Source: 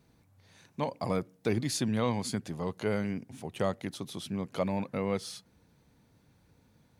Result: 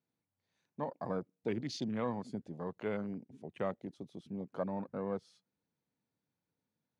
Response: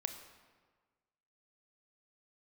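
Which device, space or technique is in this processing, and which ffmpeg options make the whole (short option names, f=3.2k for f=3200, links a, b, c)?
over-cleaned archive recording: -af "highpass=150,lowpass=7.3k,afwtdn=0.01,volume=-5.5dB"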